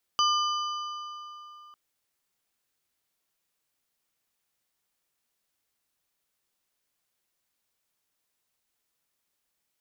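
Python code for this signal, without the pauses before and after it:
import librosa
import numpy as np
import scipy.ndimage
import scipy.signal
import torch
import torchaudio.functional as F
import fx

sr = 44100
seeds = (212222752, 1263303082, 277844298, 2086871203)

y = fx.strike_metal(sr, length_s=1.55, level_db=-21.5, body='plate', hz=1200.0, decay_s=3.38, tilt_db=4, modes=4)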